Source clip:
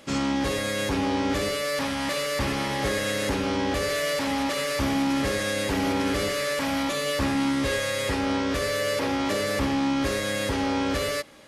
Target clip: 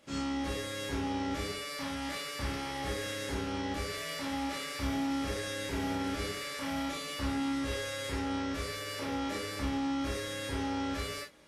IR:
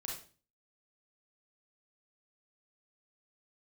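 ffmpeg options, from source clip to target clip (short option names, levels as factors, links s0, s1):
-filter_complex "[1:a]atrim=start_sample=2205,afade=t=out:st=0.17:d=0.01,atrim=end_sample=7938,asetrate=57330,aresample=44100[s0];[0:a][s0]afir=irnorm=-1:irlink=0,volume=0.473"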